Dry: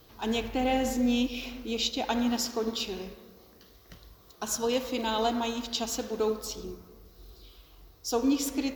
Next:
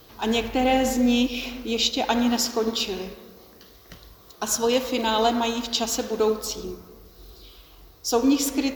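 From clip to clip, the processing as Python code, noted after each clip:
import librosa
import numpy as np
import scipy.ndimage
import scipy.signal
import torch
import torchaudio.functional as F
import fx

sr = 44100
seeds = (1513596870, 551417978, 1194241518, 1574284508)

y = fx.low_shelf(x, sr, hz=180.0, db=-4.0)
y = y * 10.0 ** (7.0 / 20.0)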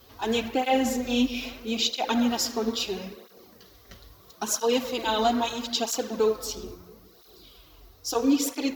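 y = fx.flanger_cancel(x, sr, hz=0.76, depth_ms=6.7)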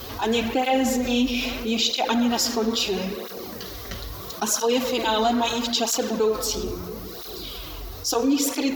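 y = fx.env_flatten(x, sr, amount_pct=50)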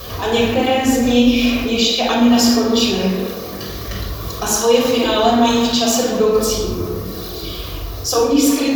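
y = fx.room_shoebox(x, sr, seeds[0], volume_m3=2800.0, walls='furnished', distance_m=5.8)
y = y * 10.0 ** (2.0 / 20.0)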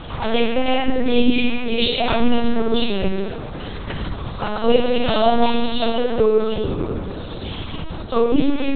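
y = fx.lpc_vocoder(x, sr, seeds[1], excitation='pitch_kept', order=8)
y = y * 10.0 ** (-1.0 / 20.0)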